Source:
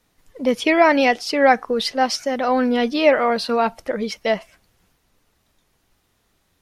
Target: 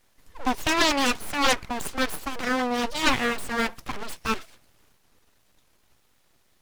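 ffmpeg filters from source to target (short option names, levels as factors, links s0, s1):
-af "aeval=exprs='abs(val(0))':c=same,aeval=exprs='0.891*(cos(1*acos(clip(val(0)/0.891,-1,1)))-cos(1*PI/2))+0.141*(cos(4*acos(clip(val(0)/0.891,-1,1)))-cos(4*PI/2))+0.0562*(cos(5*acos(clip(val(0)/0.891,-1,1)))-cos(5*PI/2))+0.224*(cos(8*acos(clip(val(0)/0.891,-1,1)))-cos(8*PI/2))':c=same"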